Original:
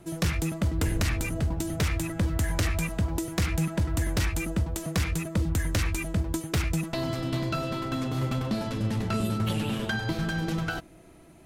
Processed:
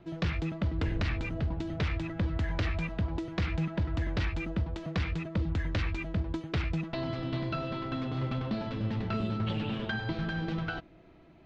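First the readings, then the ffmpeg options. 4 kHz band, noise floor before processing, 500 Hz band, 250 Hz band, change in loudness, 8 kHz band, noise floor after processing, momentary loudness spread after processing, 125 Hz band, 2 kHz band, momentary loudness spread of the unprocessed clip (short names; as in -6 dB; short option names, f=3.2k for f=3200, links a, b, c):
-6.0 dB, -51 dBFS, -4.0 dB, -4.0 dB, -4.5 dB, under -20 dB, -55 dBFS, 2 LU, -4.0 dB, -4.0 dB, 3 LU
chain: -af "lowpass=f=4.1k:w=0.5412,lowpass=f=4.1k:w=1.3066,volume=-4dB"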